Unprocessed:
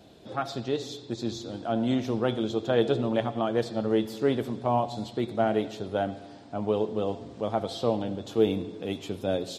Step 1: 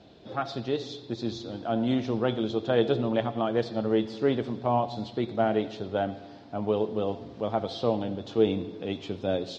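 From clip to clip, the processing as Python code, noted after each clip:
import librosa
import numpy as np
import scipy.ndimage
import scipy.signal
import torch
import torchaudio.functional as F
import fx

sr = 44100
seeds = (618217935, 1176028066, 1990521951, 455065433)

y = scipy.signal.sosfilt(scipy.signal.butter(4, 5500.0, 'lowpass', fs=sr, output='sos'), x)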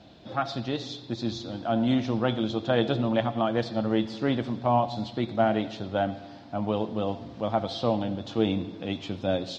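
y = fx.peak_eq(x, sr, hz=420.0, db=-10.0, octaves=0.39)
y = y * 10.0 ** (3.0 / 20.0)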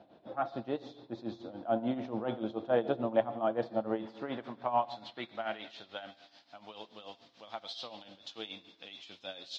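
y = x * (1.0 - 0.75 / 2.0 + 0.75 / 2.0 * np.cos(2.0 * np.pi * 6.9 * (np.arange(len(x)) / sr)))
y = fx.filter_sweep_bandpass(y, sr, from_hz=630.0, to_hz=4400.0, start_s=3.73, end_s=6.31, q=0.82)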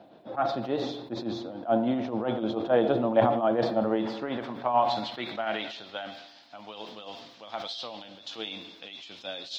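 y = scipy.signal.sosfilt(scipy.signal.butter(2, 95.0, 'highpass', fs=sr, output='sos'), x)
y = fx.sustainer(y, sr, db_per_s=54.0)
y = y * 10.0 ** (5.0 / 20.0)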